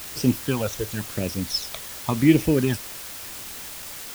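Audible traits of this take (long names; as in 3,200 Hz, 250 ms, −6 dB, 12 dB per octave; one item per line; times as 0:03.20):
phaser sweep stages 12, 0.94 Hz, lowest notch 240–1,400 Hz
a quantiser's noise floor 6 bits, dither triangular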